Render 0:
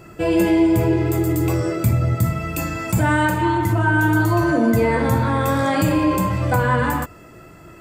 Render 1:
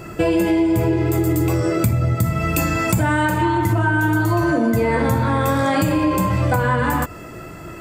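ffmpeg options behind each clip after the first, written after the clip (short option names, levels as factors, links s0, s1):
-af "acompressor=threshold=0.0708:ratio=6,volume=2.51"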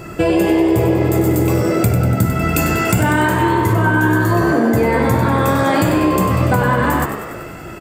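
-filter_complex "[0:a]asplit=9[s0][s1][s2][s3][s4][s5][s6][s7][s8];[s1]adelay=96,afreqshift=67,volume=0.355[s9];[s2]adelay=192,afreqshift=134,volume=0.226[s10];[s3]adelay=288,afreqshift=201,volume=0.145[s11];[s4]adelay=384,afreqshift=268,volume=0.0933[s12];[s5]adelay=480,afreqshift=335,volume=0.0596[s13];[s6]adelay=576,afreqshift=402,volume=0.038[s14];[s7]adelay=672,afreqshift=469,volume=0.0243[s15];[s8]adelay=768,afreqshift=536,volume=0.0157[s16];[s0][s9][s10][s11][s12][s13][s14][s15][s16]amix=inputs=9:normalize=0,volume=1.33"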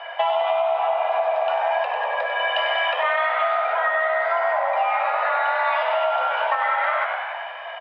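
-af "highpass=f=290:t=q:w=0.5412,highpass=f=290:t=q:w=1.307,lowpass=f=3200:t=q:w=0.5176,lowpass=f=3200:t=q:w=0.7071,lowpass=f=3200:t=q:w=1.932,afreqshift=330,acompressor=threshold=0.126:ratio=6"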